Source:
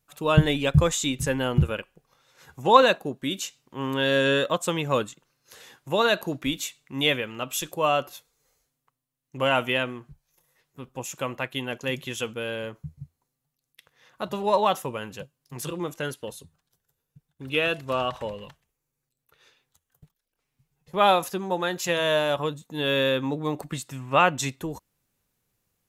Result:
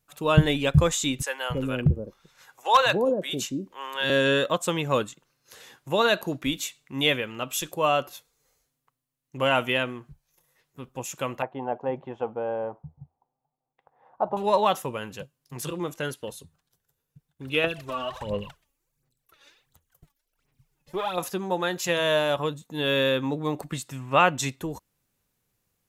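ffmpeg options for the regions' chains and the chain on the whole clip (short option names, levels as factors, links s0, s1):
-filter_complex "[0:a]asettb=1/sr,asplit=3[s0][s1][s2];[s0]atrim=end=1.224[s3];[s1]atrim=start=1.22:end=4.1,asetpts=PTS-STARTPTS,afade=t=in:d=0.004:c=qsin,afade=t=out:st=2.876:d=0.004:c=qsin,acrossover=split=550[s4][s5];[s4]adelay=280[s6];[s6][s5]amix=inputs=2:normalize=0,atrim=end_sample=127008,volume=3.55,asoftclip=hard,volume=0.282[s7];[s2]atrim=start=4.096[s8];[s3][s7]acrossfade=d=0.004:c1=hsin:c2=qsin[s9];[s9][s8]acrossfade=d=0.004:c1=qsin:c2=hsin,asettb=1/sr,asplit=3[s10][s11][s12];[s10]atrim=end=11.424[s13];[s11]atrim=start=11.42:end=14.37,asetpts=PTS-STARTPTS,afade=t=in:d=0.004:c=qsin,afade=t=out:st=2.946:d=0.004:c=qsin,lowpass=f=810:t=q:w=5.7,lowshelf=f=210:g=-7.5[s14];[s12]atrim=start=14.366[s15];[s13][s14]acrossfade=d=0.004:c1=hsin:c2=qsin[s16];[s16][s15]acrossfade=d=0.004:c1=qsin:c2=hsin,asettb=1/sr,asplit=3[s17][s18][s19];[s17]atrim=end=17.644[s20];[s18]atrim=start=17.64:end=21.18,asetpts=PTS-STARTPTS,afade=t=in:d=0.004:c=qsin,afade=t=out:st=3.536:d=0.004:c=qsin,acompressor=threshold=0.0355:ratio=5:attack=3.2:release=140:knee=1:detection=peak,aphaser=in_gain=1:out_gain=1:delay=3.6:decay=0.7:speed=1.4:type=sinusoidal[s21];[s19]atrim=start=21.176[s22];[s20][s21]acrossfade=d=0.004:c1=hsin:c2=qsin[s23];[s23][s22]acrossfade=d=0.004:c1=qsin:c2=hsin"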